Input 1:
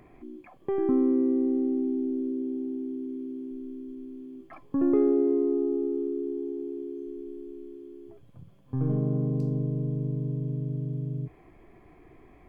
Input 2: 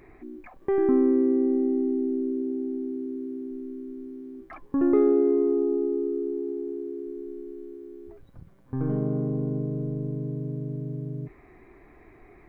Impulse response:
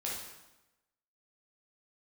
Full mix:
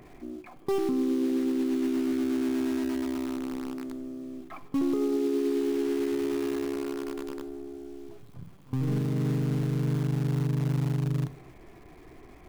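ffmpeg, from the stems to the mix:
-filter_complex "[0:a]volume=2dB,asplit=2[a][b];[b]volume=-14dB[c];[1:a]adynamicequalizer=threshold=0.0112:dfrequency=930:dqfactor=0.79:tfrequency=930:tqfactor=0.79:attack=5:release=100:ratio=0.375:range=1.5:mode=cutabove:tftype=bell,acrusher=bits=6:dc=4:mix=0:aa=0.000001,volume=-6.5dB,asplit=2[d][e];[e]volume=-13.5dB[f];[2:a]atrim=start_sample=2205[g];[c][f]amix=inputs=2:normalize=0[h];[h][g]afir=irnorm=-1:irlink=0[i];[a][d][i]amix=inputs=3:normalize=0,alimiter=limit=-20dB:level=0:latency=1:release=64"

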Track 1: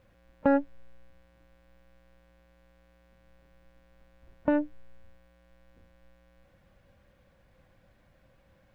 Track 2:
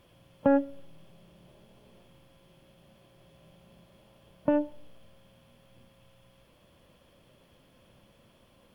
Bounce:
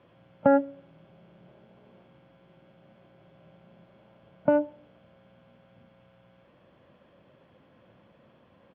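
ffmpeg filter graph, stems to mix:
-filter_complex "[0:a]volume=-1dB[a];[1:a]adelay=0.5,volume=2.5dB[b];[a][b]amix=inputs=2:normalize=0,highpass=120,lowpass=2.1k"

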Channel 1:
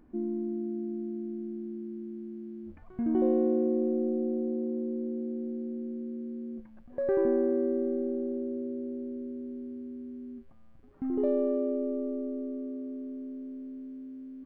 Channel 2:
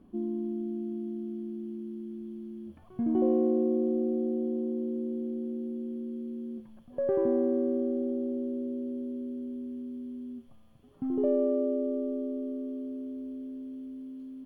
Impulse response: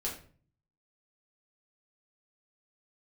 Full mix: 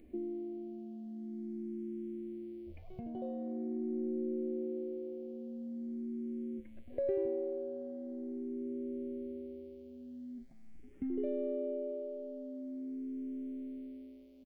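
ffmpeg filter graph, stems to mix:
-filter_complex "[0:a]firequalizer=gain_entry='entry(700,0);entry(1000,-27);entry(2100,5)':delay=0.05:min_phase=1,acompressor=threshold=-41dB:ratio=2,asplit=2[a][b];[b]afreqshift=0.44[c];[a][c]amix=inputs=2:normalize=1,volume=2.5dB,asplit=2[d][e];[e]volume=-20.5dB[f];[1:a]acompressor=threshold=-30dB:ratio=6,volume=-1,volume=-15.5dB[g];[2:a]atrim=start_sample=2205[h];[f][h]afir=irnorm=-1:irlink=0[i];[d][g][i]amix=inputs=3:normalize=0"

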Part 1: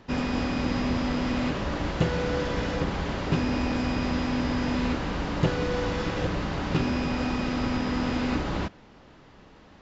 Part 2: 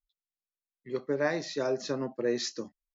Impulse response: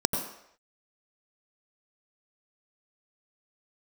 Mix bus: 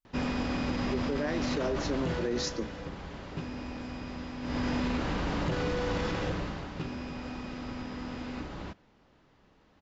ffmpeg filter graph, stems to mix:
-filter_complex "[0:a]adelay=50,volume=8.5dB,afade=t=out:st=1.96:d=0.65:silence=0.334965,afade=t=in:st=4.41:d=0.28:silence=0.266073,afade=t=out:st=6.04:d=0.67:silence=0.298538[a];[1:a]equalizer=f=280:w=1.5:g=5.5,volume=0dB[b];[a][b]amix=inputs=2:normalize=0,alimiter=limit=-22.5dB:level=0:latency=1:release=22"

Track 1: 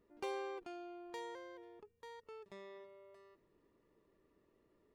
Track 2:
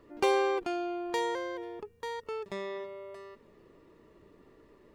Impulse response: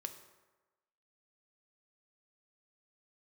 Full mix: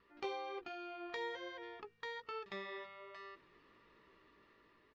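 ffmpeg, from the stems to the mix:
-filter_complex "[0:a]flanger=delay=15:depth=4.2:speed=1.2,volume=2dB[a];[1:a]highpass=f=1.1k:w=0.5412,highpass=f=1.1k:w=1.3066,acompressor=threshold=-47dB:ratio=6,volume=-1,adelay=1.5,volume=-3dB[b];[a][b]amix=inputs=2:normalize=0,lowpass=f=4.8k:w=0.5412,lowpass=f=4.8k:w=1.3066,dynaudnorm=f=410:g=5:m=5dB"

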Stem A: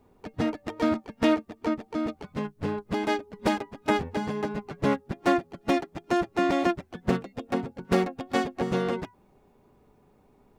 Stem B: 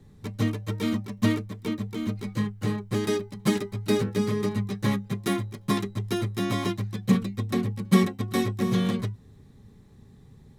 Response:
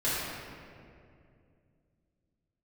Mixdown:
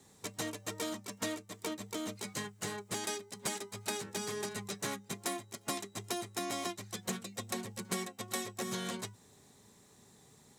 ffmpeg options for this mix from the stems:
-filter_complex "[0:a]volume=-3.5dB[a];[1:a]highshelf=f=3.7k:g=7,volume=-1.5dB[b];[a][b]amix=inputs=2:normalize=0,highpass=f=590:p=1,equalizer=f=7.5k:w=1.3:g=9.5,acompressor=threshold=-36dB:ratio=4"

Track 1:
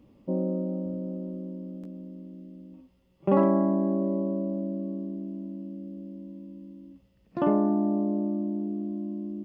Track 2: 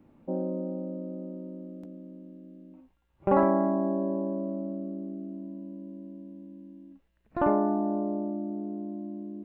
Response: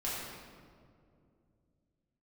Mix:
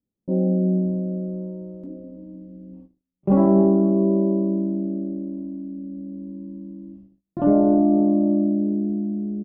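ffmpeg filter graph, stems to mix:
-filter_complex "[0:a]volume=-2.5dB[a];[1:a]lowpass=f=2.1k:p=1,equalizer=f=410:w=0.47:g=8,asplit=2[b][c];[c]adelay=2.2,afreqshift=-0.31[d];[b][d]amix=inputs=2:normalize=1,adelay=26,volume=-8.5dB,asplit=2[e][f];[f]volume=-3.5dB[g];[2:a]atrim=start_sample=2205[h];[g][h]afir=irnorm=-1:irlink=0[i];[a][e][i]amix=inputs=3:normalize=0,agate=range=-35dB:threshold=-51dB:ratio=16:detection=peak,tiltshelf=f=720:g=9"

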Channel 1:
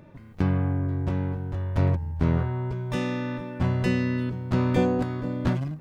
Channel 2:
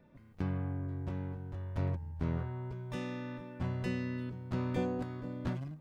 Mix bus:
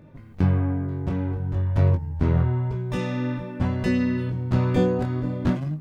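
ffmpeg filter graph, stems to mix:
-filter_complex "[0:a]lowshelf=f=400:g=5.5,flanger=delay=19.5:depth=6.9:speed=0.52,volume=-0.5dB[a];[1:a]volume=0dB[b];[a][b]amix=inputs=2:normalize=0"

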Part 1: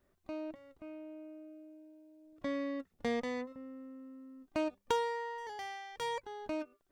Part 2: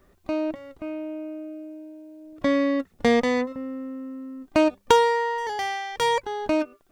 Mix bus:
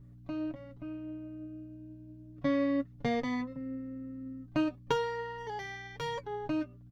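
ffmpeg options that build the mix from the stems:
-filter_complex "[0:a]flanger=delay=8.8:depth=4.9:regen=36:speed=1:shape=triangular,volume=-2dB[a];[1:a]aeval=exprs='val(0)+0.00891*(sin(2*PI*60*n/s)+sin(2*PI*2*60*n/s)/2+sin(2*PI*3*60*n/s)/3+sin(2*PI*4*60*n/s)/4+sin(2*PI*5*60*n/s)/5)':c=same,lowpass=f=8.8k:w=0.5412,lowpass=f=8.8k:w=1.3066,lowshelf=f=400:g=8,volume=-19.5dB[b];[a][b]amix=inputs=2:normalize=0,equalizer=f=140:w=5.4:g=12.5,aecho=1:1:7.1:0.82"

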